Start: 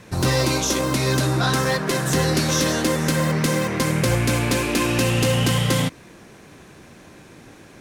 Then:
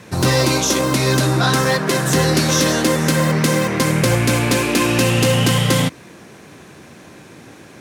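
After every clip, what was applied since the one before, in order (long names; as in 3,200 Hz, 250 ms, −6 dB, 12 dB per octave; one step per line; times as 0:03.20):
high-pass filter 86 Hz
level +4.5 dB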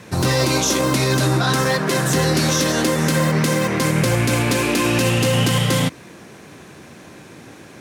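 brickwall limiter −8.5 dBFS, peak gain reduction 4.5 dB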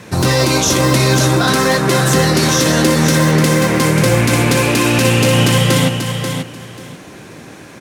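repeating echo 537 ms, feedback 19%, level −7 dB
level +4.5 dB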